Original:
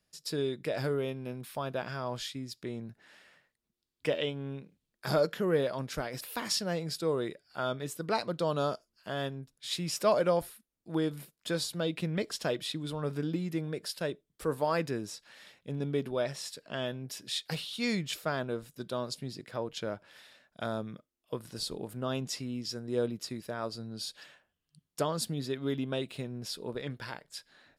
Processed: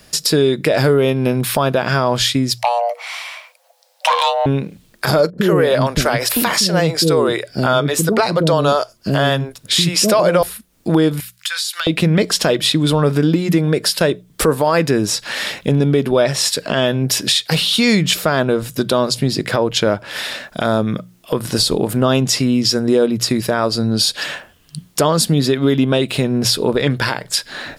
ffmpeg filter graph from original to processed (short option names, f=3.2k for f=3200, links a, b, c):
-filter_complex "[0:a]asettb=1/sr,asplit=3[a][b][c];[a]atrim=end=2.584[d];[b]atrim=start=2.58:end=4.46,asetpts=PTS-STARTPTS,afade=t=in:d=0.004:c=qsin,afade=t=out:st=1.876:d=0.004:c=qsin,aeval=exprs='(tanh(25.1*val(0)+0.5)-tanh(0.5))/25.1':c=same,afreqshift=480[e];[c]atrim=start=4.456[f];[d][e]acrossfade=d=0.004:c1=hsin:c2=qsin[g];[g][f]acrossfade=d=0.004:c1=qsin:c2=hsin,asettb=1/sr,asplit=3[h][i][j];[h]atrim=end=5.304[k];[i]atrim=start=5.3:end=10.43,asetpts=PTS-STARTPTS,afade=t=in:d=0.004:c=qsin,afade=t=out:st=5.126:d=0.004:c=qsin,deesser=0.45,acrossover=split=390[l][m];[m]adelay=80[n];[l][n]amix=inputs=2:normalize=0,atrim=end_sample=226233[o];[j]atrim=start=10.426[p];[k][o]acrossfade=d=0.004:c1=hsin:c2=qsin[q];[q][p]acrossfade=d=0.004:c1=qsin:c2=hsin,asettb=1/sr,asplit=3[r][s][t];[r]atrim=end=11.204[u];[s]atrim=start=11.2:end=11.87,asetpts=PTS-STARTPTS,afade=t=in:d=0.004:c=qsin,afade=t=out:st=0.666:d=0.004:c=qsin,highpass=f=1.4k:w=0.5412,highpass=f=1.4k:w=1.3066,acompressor=threshold=-50dB:ratio=8:attack=3.2:release=140:knee=1:detection=peak[v];[t]atrim=start=11.866[w];[u][v]acrossfade=d=0.004:c1=hsin:c2=qsin[x];[x][w]acrossfade=d=0.004:c1=qsin:c2=hsin,bandreject=f=60:t=h:w=6,bandreject=f=120:t=h:w=6,bandreject=f=180:t=h:w=6,acompressor=threshold=-49dB:ratio=2.5,alimiter=level_in=35.5dB:limit=-1dB:release=50:level=0:latency=1,volume=-3.5dB"